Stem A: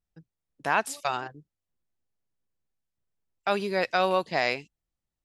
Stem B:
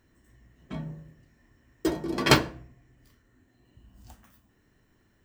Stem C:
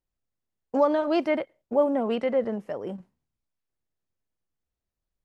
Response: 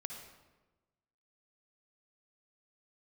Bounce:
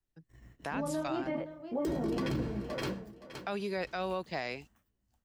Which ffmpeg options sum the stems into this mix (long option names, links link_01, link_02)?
-filter_complex "[0:a]volume=-4.5dB,asplit=2[link_01][link_02];[1:a]agate=range=-32dB:threshold=-57dB:ratio=16:detection=peak,asoftclip=type=tanh:threshold=-10.5dB,volume=2.5dB,asplit=3[link_03][link_04][link_05];[link_04]volume=-16dB[link_06];[link_05]volume=-15.5dB[link_07];[2:a]lowshelf=frequency=390:gain=8,flanger=delay=19.5:depth=2.6:speed=0.47,volume=-9dB,asplit=3[link_08][link_09][link_10];[link_09]volume=-14.5dB[link_11];[link_10]volume=-13.5dB[link_12];[link_02]apad=whole_len=231488[link_13];[link_03][link_13]sidechaincompress=threshold=-34dB:ratio=8:attack=16:release=989[link_14];[3:a]atrim=start_sample=2205[link_15];[link_06][link_11]amix=inputs=2:normalize=0[link_16];[link_16][link_15]afir=irnorm=-1:irlink=0[link_17];[link_07][link_12]amix=inputs=2:normalize=0,aecho=0:1:519|1038|1557|2076:1|0.23|0.0529|0.0122[link_18];[link_01][link_14][link_08][link_17][link_18]amix=inputs=5:normalize=0,acrossover=split=350[link_19][link_20];[link_20]acompressor=threshold=-32dB:ratio=10[link_21];[link_19][link_21]amix=inputs=2:normalize=0,alimiter=level_in=1.5dB:limit=-24dB:level=0:latency=1:release=23,volume=-1.5dB"